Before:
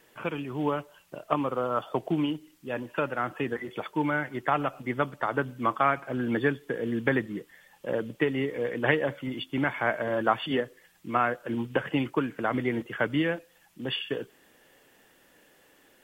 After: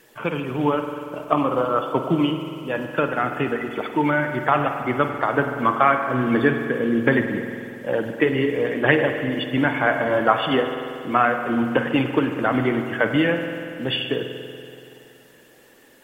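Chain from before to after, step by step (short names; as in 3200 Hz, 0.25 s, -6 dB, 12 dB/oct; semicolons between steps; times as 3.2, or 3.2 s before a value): bin magnitudes rounded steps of 15 dB; spring tank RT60 2.6 s, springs 47 ms, chirp 40 ms, DRR 5.5 dB; gain +7 dB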